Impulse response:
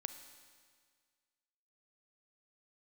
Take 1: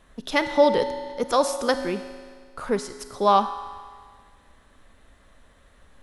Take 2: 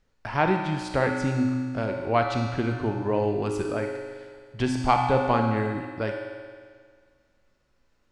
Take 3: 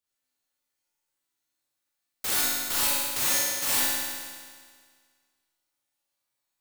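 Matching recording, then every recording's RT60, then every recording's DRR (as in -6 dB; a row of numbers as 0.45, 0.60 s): 1; 1.8, 1.8, 1.8 s; 9.0, 2.5, -7.0 dB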